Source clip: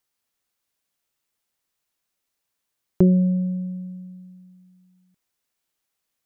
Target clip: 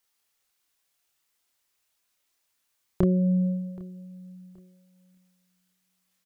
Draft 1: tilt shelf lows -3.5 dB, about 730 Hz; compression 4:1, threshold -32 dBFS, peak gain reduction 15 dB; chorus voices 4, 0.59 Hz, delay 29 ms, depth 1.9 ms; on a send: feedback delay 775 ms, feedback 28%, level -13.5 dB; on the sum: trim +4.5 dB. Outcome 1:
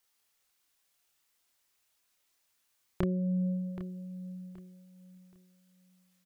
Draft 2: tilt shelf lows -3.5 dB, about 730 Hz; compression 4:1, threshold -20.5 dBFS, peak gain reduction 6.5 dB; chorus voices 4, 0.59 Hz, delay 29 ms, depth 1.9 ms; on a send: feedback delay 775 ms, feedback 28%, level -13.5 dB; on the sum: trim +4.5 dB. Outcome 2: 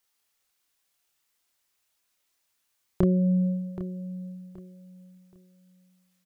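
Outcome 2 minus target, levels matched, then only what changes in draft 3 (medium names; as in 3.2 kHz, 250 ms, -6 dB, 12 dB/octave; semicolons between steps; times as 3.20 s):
echo-to-direct +9 dB
change: feedback delay 775 ms, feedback 28%, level -22.5 dB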